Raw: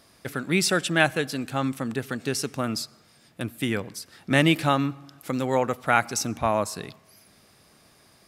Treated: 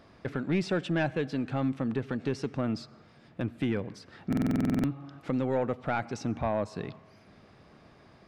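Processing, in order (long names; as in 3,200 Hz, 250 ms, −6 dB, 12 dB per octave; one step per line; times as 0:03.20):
dynamic equaliser 1,200 Hz, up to −5 dB, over −38 dBFS, Q 1.3
in parallel at +3 dB: downward compressor, threshold −35 dBFS, peak gain reduction 18 dB
on the sum: soft clipping −15.5 dBFS, distortion −13 dB
head-to-tape spacing loss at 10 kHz 30 dB
buffer that repeats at 0:04.28, samples 2,048, times 11
level −2.5 dB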